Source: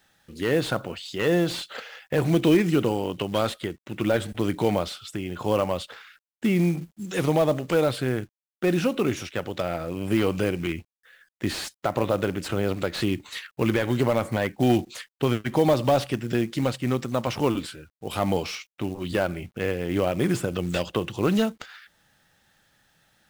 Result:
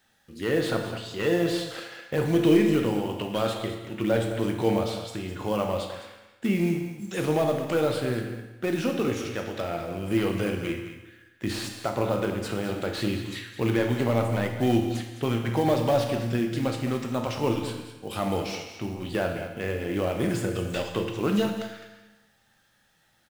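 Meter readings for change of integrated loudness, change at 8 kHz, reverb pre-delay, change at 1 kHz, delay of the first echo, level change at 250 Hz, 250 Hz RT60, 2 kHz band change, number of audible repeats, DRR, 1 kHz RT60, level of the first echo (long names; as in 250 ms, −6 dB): −1.5 dB, −2.0 dB, 9 ms, −2.0 dB, 209 ms, −1.0 dB, 1.1 s, −2.0 dB, 1, 2.0 dB, 1.1 s, −11.0 dB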